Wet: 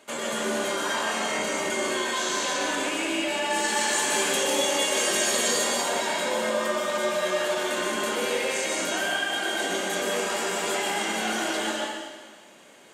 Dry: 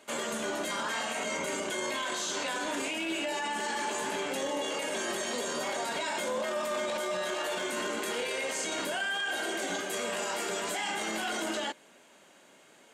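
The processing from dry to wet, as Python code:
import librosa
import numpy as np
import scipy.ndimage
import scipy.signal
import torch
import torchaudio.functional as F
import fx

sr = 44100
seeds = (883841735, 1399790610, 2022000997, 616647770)

y = fx.high_shelf(x, sr, hz=3000.0, db=9.5, at=(3.5, 5.64))
y = fx.rev_plate(y, sr, seeds[0], rt60_s=1.5, hf_ratio=1.0, predelay_ms=110, drr_db=-2.0)
y = y * librosa.db_to_amplitude(2.0)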